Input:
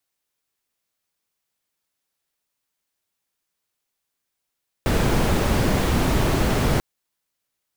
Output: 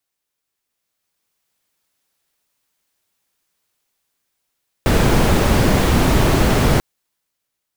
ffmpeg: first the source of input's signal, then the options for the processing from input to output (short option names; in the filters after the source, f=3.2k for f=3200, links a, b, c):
-f lavfi -i "anoisesrc=c=brown:a=0.525:d=1.94:r=44100:seed=1"
-af "dynaudnorm=f=320:g=7:m=8dB"